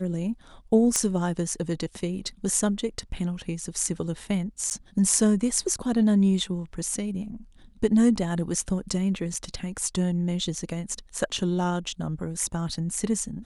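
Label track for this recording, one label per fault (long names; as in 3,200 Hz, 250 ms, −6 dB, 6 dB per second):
0.960000	0.960000	click −9 dBFS
4.700000	4.710000	drop-out 9.8 ms
9.340000	9.340000	drop-out 2.9 ms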